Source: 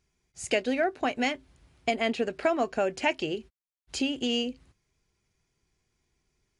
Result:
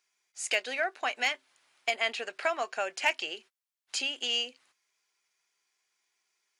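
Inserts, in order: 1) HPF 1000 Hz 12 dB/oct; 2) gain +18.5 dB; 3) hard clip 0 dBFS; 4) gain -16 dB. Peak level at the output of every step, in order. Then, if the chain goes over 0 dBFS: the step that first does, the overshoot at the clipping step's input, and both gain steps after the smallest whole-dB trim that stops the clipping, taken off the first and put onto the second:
-14.0, +4.5, 0.0, -16.0 dBFS; step 2, 4.5 dB; step 2 +13.5 dB, step 4 -11 dB

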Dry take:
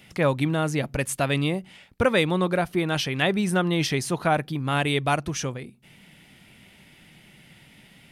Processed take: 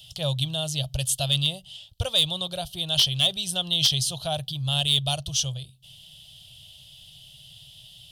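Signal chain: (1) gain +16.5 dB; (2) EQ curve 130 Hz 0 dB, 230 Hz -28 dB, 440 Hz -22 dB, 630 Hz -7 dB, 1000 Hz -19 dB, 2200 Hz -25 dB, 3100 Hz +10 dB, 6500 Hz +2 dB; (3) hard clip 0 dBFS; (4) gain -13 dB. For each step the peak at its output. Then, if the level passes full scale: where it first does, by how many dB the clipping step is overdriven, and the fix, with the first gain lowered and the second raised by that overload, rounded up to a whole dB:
+8.5, +7.0, 0.0, -13.0 dBFS; step 1, 7.0 dB; step 1 +9.5 dB, step 4 -6 dB

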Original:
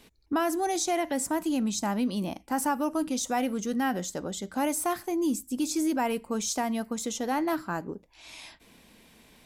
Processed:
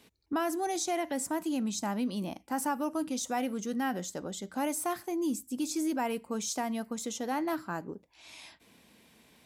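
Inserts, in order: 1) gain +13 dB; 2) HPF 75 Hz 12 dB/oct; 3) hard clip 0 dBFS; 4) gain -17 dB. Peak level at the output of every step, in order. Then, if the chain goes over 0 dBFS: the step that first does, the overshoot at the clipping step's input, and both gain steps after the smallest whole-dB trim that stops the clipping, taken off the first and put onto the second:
-5.0, -4.0, -4.0, -21.0 dBFS; no overload

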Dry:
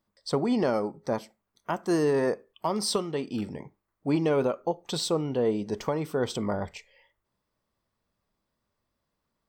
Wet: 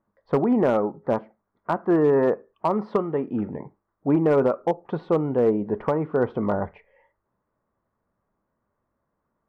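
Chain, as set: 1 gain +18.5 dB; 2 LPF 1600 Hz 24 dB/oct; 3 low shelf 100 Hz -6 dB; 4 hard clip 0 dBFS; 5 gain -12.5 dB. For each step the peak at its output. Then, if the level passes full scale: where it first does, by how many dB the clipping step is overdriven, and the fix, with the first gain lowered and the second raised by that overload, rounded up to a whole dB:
+2.5, +3.0, +3.5, 0.0, -12.5 dBFS; step 1, 3.5 dB; step 1 +14.5 dB, step 5 -8.5 dB

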